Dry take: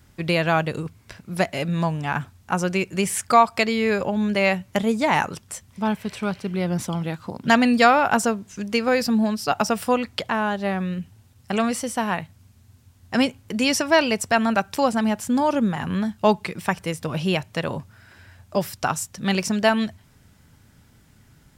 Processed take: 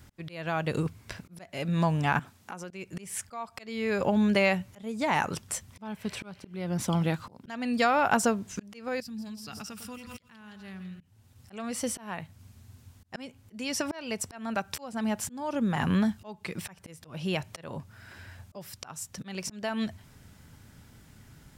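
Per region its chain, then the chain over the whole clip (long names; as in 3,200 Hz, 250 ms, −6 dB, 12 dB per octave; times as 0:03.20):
0:02.19–0:02.71: high-pass filter 180 Hz + downward compressor 5 to 1, threshold −39 dBFS
0:09.00–0:11.01: guitar amp tone stack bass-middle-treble 6-0-2 + echo with a time of its own for lows and highs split 1,200 Hz, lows 103 ms, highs 167 ms, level −11.5 dB + background raised ahead of every attack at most 37 dB per second
whole clip: downward compressor 3 to 1, threshold −22 dBFS; volume swells 510 ms; level +1 dB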